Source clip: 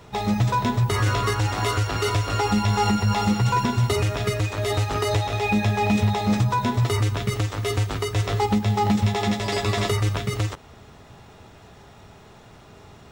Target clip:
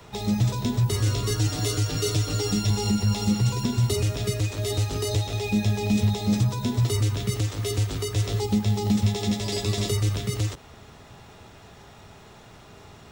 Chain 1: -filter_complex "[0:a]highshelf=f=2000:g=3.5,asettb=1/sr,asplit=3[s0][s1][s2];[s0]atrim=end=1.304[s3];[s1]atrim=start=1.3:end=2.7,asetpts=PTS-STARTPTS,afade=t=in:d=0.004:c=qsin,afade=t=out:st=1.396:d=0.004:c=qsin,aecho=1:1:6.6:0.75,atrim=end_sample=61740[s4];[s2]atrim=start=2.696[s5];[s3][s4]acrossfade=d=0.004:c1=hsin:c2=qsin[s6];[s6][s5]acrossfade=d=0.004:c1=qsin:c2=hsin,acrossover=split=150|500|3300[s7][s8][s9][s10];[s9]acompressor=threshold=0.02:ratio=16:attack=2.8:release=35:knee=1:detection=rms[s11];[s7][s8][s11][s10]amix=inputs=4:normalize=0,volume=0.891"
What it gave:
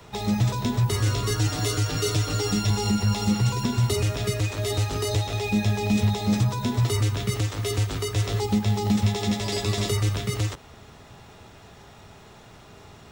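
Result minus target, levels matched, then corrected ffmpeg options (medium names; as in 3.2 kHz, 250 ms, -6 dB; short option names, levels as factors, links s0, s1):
compression: peak gain reduction -5.5 dB
-filter_complex "[0:a]highshelf=f=2000:g=3.5,asettb=1/sr,asplit=3[s0][s1][s2];[s0]atrim=end=1.304[s3];[s1]atrim=start=1.3:end=2.7,asetpts=PTS-STARTPTS,afade=t=in:d=0.004:c=qsin,afade=t=out:st=1.396:d=0.004:c=qsin,aecho=1:1:6.6:0.75,atrim=end_sample=61740[s4];[s2]atrim=start=2.696[s5];[s3][s4]acrossfade=d=0.004:c1=hsin:c2=qsin[s6];[s6][s5]acrossfade=d=0.004:c1=qsin:c2=hsin,acrossover=split=150|500|3300[s7][s8][s9][s10];[s9]acompressor=threshold=0.01:ratio=16:attack=2.8:release=35:knee=1:detection=rms[s11];[s7][s8][s11][s10]amix=inputs=4:normalize=0,volume=0.891"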